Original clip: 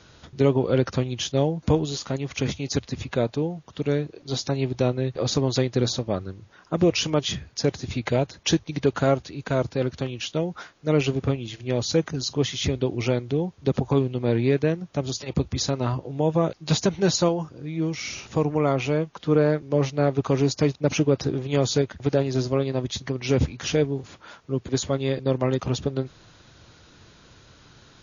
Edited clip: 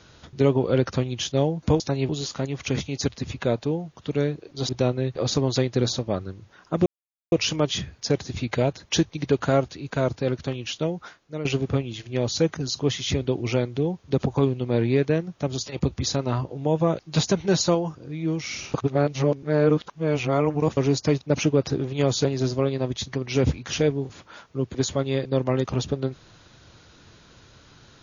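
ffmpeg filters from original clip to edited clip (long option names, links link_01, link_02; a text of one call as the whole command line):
ffmpeg -i in.wav -filter_complex "[0:a]asplit=9[link_01][link_02][link_03][link_04][link_05][link_06][link_07][link_08][link_09];[link_01]atrim=end=1.802[link_10];[link_02]atrim=start=4.398:end=4.692[link_11];[link_03]atrim=start=1.798:end=4.402[link_12];[link_04]atrim=start=4.688:end=6.86,asetpts=PTS-STARTPTS,afade=type=out:start_time=2.168:duration=0.004:curve=hsin,apad=pad_dur=0.46[link_13];[link_05]atrim=start=6.86:end=10.99,asetpts=PTS-STARTPTS,afade=type=in:duration=0.004:curve=hsin,afade=type=out:start_time=3.51:duration=0.62:silence=0.223872[link_14];[link_06]atrim=start=10.99:end=18.282,asetpts=PTS-STARTPTS,afade=type=in:duration=0.004:curve=hsin:silence=0.223872[link_15];[link_07]atrim=start=18.278:end=20.312,asetpts=PTS-STARTPTS,areverse[link_16];[link_08]atrim=start=20.308:end=21.792[link_17];[link_09]atrim=start=22.188[link_18];[link_10][link_11]acrossfade=duration=0.004:curve1=hsin:curve2=hsin[link_19];[link_19][link_12]acrossfade=duration=0.004:curve1=hsin:curve2=hsin[link_20];[link_13][link_14][link_15]concat=n=3:v=0:a=1[link_21];[link_20][link_21]acrossfade=duration=0.004:curve1=hsin:curve2=hsin[link_22];[link_22][link_16]acrossfade=duration=0.004:curve1=hsin:curve2=hsin[link_23];[link_23][link_17]acrossfade=duration=0.004:curve1=hsin:curve2=hsin[link_24];[link_24][link_18]acrossfade=duration=0.004:curve1=hsin:curve2=hsin" out.wav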